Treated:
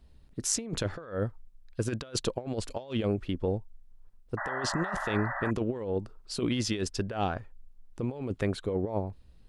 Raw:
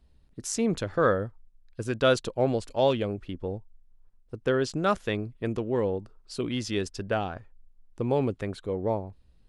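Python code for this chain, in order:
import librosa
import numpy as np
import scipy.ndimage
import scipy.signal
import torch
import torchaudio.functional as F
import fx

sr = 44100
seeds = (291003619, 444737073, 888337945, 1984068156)

y = fx.over_compress(x, sr, threshold_db=-30.0, ratio=-0.5)
y = fx.spec_paint(y, sr, seeds[0], shape='noise', start_s=4.37, length_s=1.14, low_hz=550.0, high_hz=2000.0, level_db=-35.0)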